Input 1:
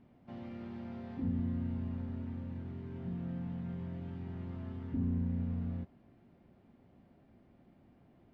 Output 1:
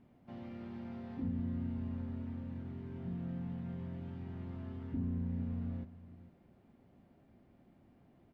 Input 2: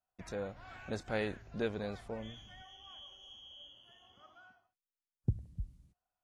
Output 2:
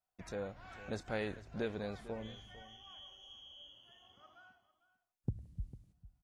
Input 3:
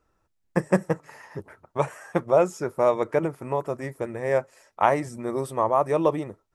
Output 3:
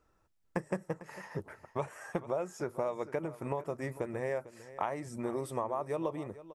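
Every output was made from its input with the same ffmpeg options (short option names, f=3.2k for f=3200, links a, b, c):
-af "acompressor=threshold=-30dB:ratio=6,aecho=1:1:450:0.158,volume=-1.5dB"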